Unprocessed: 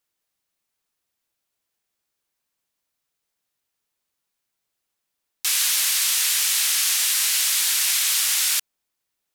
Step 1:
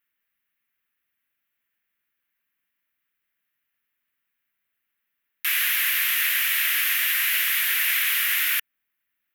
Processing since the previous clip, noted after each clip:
drawn EQ curve 160 Hz 0 dB, 250 Hz +4 dB, 370 Hz −3 dB, 870 Hz −4 dB, 1,800 Hz +13 dB, 2,900 Hz +6 dB, 4,500 Hz −9 dB, 8,400 Hz −11 dB, 13,000 Hz +7 dB
level −4 dB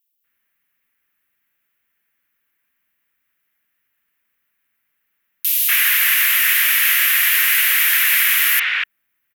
multiband delay without the direct sound highs, lows 240 ms, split 3,700 Hz
level +8 dB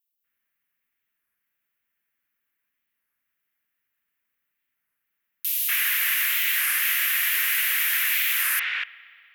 spring reverb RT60 2.4 s, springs 58 ms, chirp 80 ms, DRR 17 dB
wow of a warped record 33 1/3 rpm, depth 160 cents
level −8 dB

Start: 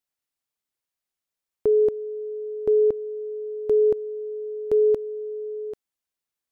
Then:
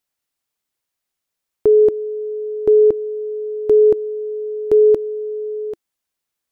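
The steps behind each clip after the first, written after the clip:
dynamic equaliser 340 Hz, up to +7 dB, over −42 dBFS, Q 6.3
level +6.5 dB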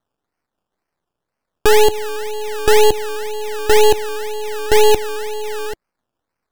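sample-and-hold swept by an LFO 17×, swing 60% 2 Hz
half-wave rectification
level +5 dB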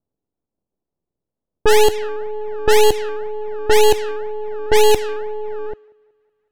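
feedback echo with a high-pass in the loop 186 ms, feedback 76%, high-pass 530 Hz, level −19.5 dB
low-pass that shuts in the quiet parts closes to 450 Hz, open at −5.5 dBFS
level −1 dB

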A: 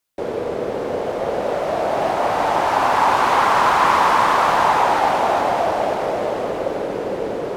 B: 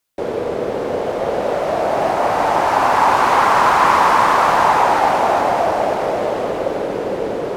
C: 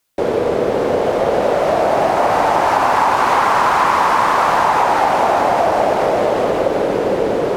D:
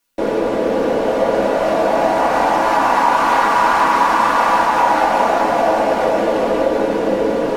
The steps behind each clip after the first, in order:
dynamic equaliser 3,400 Hz, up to −3 dB, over −37 dBFS, Q 2.1; level +2.5 dB
downward compressor, threshold −16 dBFS, peak gain reduction 7.5 dB; level +5.5 dB
convolution reverb RT60 0.15 s, pre-delay 3 ms, DRR −1 dB; level −4 dB

